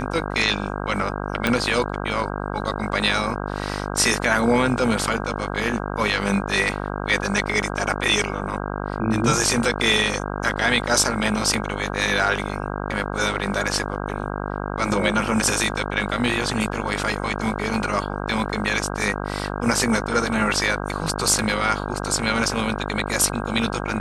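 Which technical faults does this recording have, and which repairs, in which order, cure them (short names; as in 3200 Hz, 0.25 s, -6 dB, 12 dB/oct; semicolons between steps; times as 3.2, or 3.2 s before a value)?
buzz 50 Hz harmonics 32 -28 dBFS
1.47 pop -5 dBFS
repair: de-click; de-hum 50 Hz, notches 32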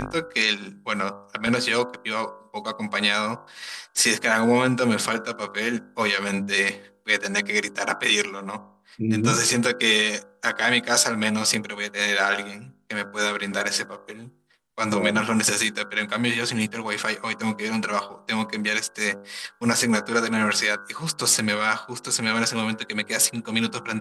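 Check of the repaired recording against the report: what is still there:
1.47 pop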